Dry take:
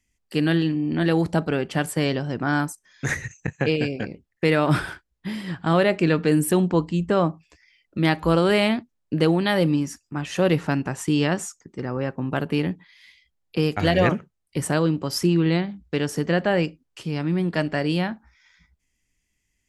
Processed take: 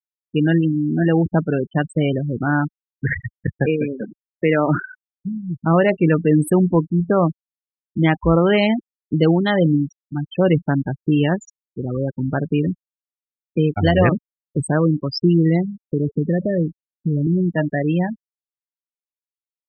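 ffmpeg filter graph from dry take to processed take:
-filter_complex "[0:a]asettb=1/sr,asplit=3[a][b][c];[a]atrim=end=3.664[d];[b]atrim=start=3.66:end=4.86,asetpts=PTS-STARTPTS,afade=t=in:d=0.004:c=qsin,afade=t=out:st=1.196:d=0.004:c=qsin,acrossover=split=150 3500:gain=0.126 1 0.178[e][f][g];[e][f][g]amix=inputs=3:normalize=0,bandreject=f=1.1k:w=13[h];[c]atrim=start=4.856[i];[d][h]acrossfade=d=0.004:c1=hsin:c2=qsin[j];[j][i]acrossfade=d=0.004:c1=qsin:c2=hsin,asettb=1/sr,asplit=3[k][l][m];[k]atrim=end=15.864[n];[l]atrim=start=15.86:end=17.27,asetpts=PTS-STARTPTS,afade=t=in:d=0.004:c=qsin,afade=t=out:st=1.406:d=0.004:c=qsin,lowshelf=f=480:g=6.5,acompressor=threshold=-21dB:ratio=2.5:attack=3.2:release=140:knee=1:detection=peak,asuperstop=centerf=1100:order=20:qfactor=1.1[o];[m]atrim=start=17.266[p];[n][o]acrossfade=d=0.004:c1=hsin:c2=qsin[q];[q][p]acrossfade=d=0.004:c1=qsin:c2=hsin,afftfilt=real='re*gte(hypot(re,im),0.112)':imag='im*gte(hypot(re,im),0.112)':win_size=1024:overlap=0.75,lowshelf=f=91:g=10,volume=3dB"

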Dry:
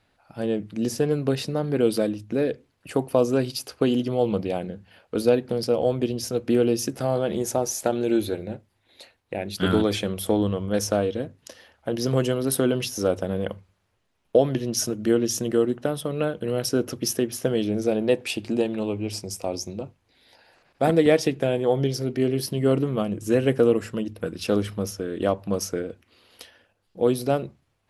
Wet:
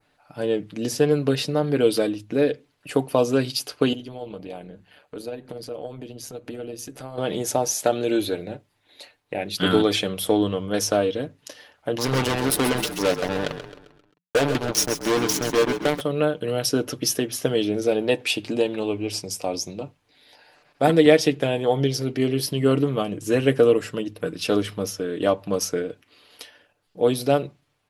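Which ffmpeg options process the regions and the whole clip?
-filter_complex "[0:a]asettb=1/sr,asplit=3[a][b][c];[a]atrim=end=3.934[d];[b]atrim=start=3.93:end=7.18,asetpts=PTS-STARTPTS,afade=t=in:d=0.004:c=qsin,afade=t=out:st=3.246:d=0.004:c=qsin,bandreject=f=5.3k:w=9.3,acompressor=threshold=-37dB:ratio=2:attack=3.2:release=140:knee=1:detection=peak,tremolo=f=140:d=0.519[e];[c]atrim=start=7.176[f];[d][e]acrossfade=d=0.004:c1=hsin:c2=qsin[g];[g][f]acrossfade=d=0.004:c1=qsin:c2=hsin,asettb=1/sr,asplit=3[h][i][j];[h]atrim=end=11.984[k];[i]atrim=start=11.98:end=16.01,asetpts=PTS-STARTPTS,afade=t=in:d=0.004:c=qsin,afade=t=out:st=4.026:d=0.004:c=qsin,acrusher=bits=3:mix=0:aa=0.5,asoftclip=type=hard:threshold=-17dB,asplit=6[l][m][n][o][p][q];[m]adelay=132,afreqshift=-36,volume=-10dB[r];[n]adelay=264,afreqshift=-72,volume=-16.7dB[s];[o]adelay=396,afreqshift=-108,volume=-23.5dB[t];[p]adelay=528,afreqshift=-144,volume=-30.2dB[u];[q]adelay=660,afreqshift=-180,volume=-37dB[v];[l][r][s][t][u][v]amix=inputs=6:normalize=0,atrim=end_sample=177723[w];[j]atrim=start=16.006[x];[k][w]acrossfade=d=0.004:c1=hsin:c2=qsin[y];[y][x]acrossfade=d=0.004:c1=qsin:c2=hsin,lowshelf=f=150:g=-7,aecho=1:1:6.8:0.44,adynamicequalizer=threshold=0.00708:dfrequency=3400:dqfactor=1.2:tfrequency=3400:tqfactor=1.2:attack=5:release=100:ratio=0.375:range=2:mode=boostabove:tftype=bell,volume=2dB"

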